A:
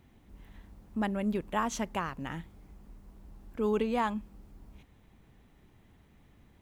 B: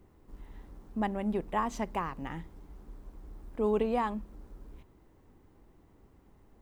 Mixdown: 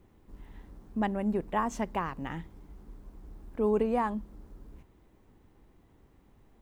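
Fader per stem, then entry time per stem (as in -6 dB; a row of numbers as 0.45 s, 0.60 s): -8.0 dB, -1.5 dB; 0.00 s, 0.00 s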